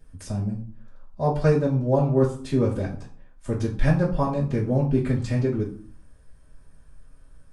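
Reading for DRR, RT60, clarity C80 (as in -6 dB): -7.5 dB, 0.45 s, 13.5 dB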